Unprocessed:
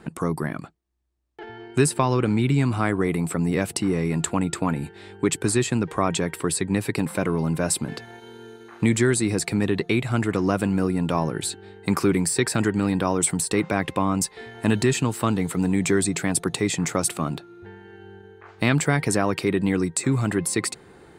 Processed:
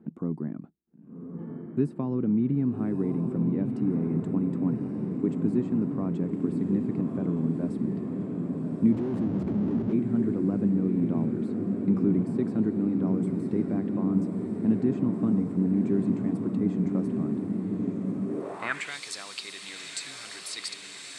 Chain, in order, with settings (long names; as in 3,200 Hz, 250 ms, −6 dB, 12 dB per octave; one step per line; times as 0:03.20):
feedback delay with all-pass diffusion 1,181 ms, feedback 77%, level −5 dB
0:08.92–0:09.93: comparator with hysteresis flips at −24.5 dBFS
band-pass filter sweep 230 Hz → 4,100 Hz, 0:18.26–0:18.96